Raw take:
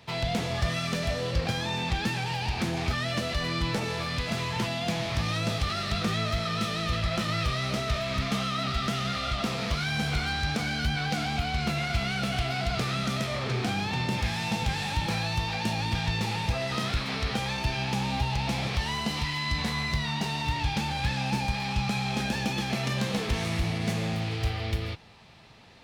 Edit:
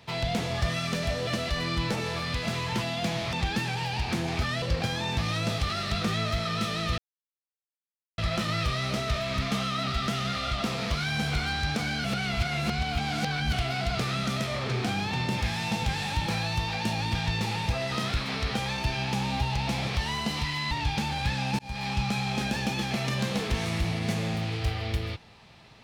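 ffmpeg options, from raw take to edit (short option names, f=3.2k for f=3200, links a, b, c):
-filter_complex "[0:a]asplit=10[a][b][c][d][e][f][g][h][i][j];[a]atrim=end=1.272[k];[b]atrim=start=3.108:end=5.172[l];[c]atrim=start=1.818:end=3.112[m];[d]atrim=start=1.268:end=1.822[n];[e]atrim=start=5.168:end=6.98,asetpts=PTS-STARTPTS,afade=t=out:st=1.808:d=0.004:c=hsin,apad=pad_dur=1.2[o];[f]atrim=start=6.98:end=10.842,asetpts=PTS-STARTPTS,afade=t=in:d=0.004:c=hsin[p];[g]atrim=start=10.838:end=12.332,asetpts=PTS-STARTPTS,areverse[q];[h]atrim=start=12.328:end=19.512[r];[i]atrim=start=20.498:end=21.38,asetpts=PTS-STARTPTS,afade=t=out:st=0.878:d=0.004:c=hsin[s];[j]atrim=start=21.38,asetpts=PTS-STARTPTS,afade=t=in:d=0.27[t];[k][l]acrossfade=d=0.004:c1=hsin:c2=hsin[u];[u][m]acrossfade=d=0.004:c1=hsin:c2=hsin[v];[v][n]acrossfade=d=0.004:c1=hsin:c2=hsin[w];[o][p]concat=n=2:v=0:a=1[x];[w][x]acrossfade=d=0.004:c1=hsin:c2=hsin[y];[y][q]acrossfade=d=0.004:c1=hsin:c2=hsin[z];[z][r]acrossfade=d=0.004:c1=hsin:c2=hsin[aa];[s][t]concat=n=2:v=0:a=1[ab];[aa][ab]acrossfade=d=0.004:c1=hsin:c2=hsin"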